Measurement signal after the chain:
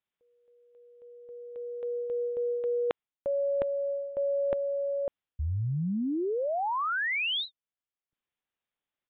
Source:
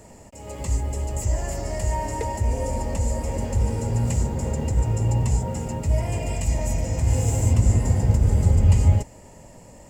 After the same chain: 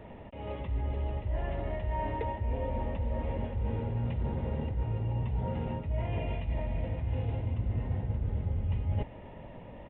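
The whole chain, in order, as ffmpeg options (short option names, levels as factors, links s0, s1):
-af "areverse,acompressor=threshold=0.0355:ratio=6,areverse,aresample=8000,aresample=44100"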